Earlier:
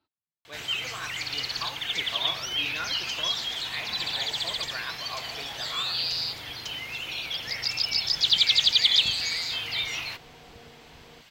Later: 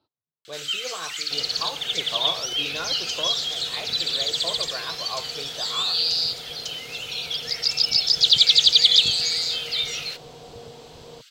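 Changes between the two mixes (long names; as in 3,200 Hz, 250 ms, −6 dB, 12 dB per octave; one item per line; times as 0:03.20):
first sound: add linear-phase brick-wall high-pass 1,200 Hz
master: add octave-band graphic EQ 125/500/1,000/2,000/4,000/8,000 Hz +9/+11/+4/−7/+6/+7 dB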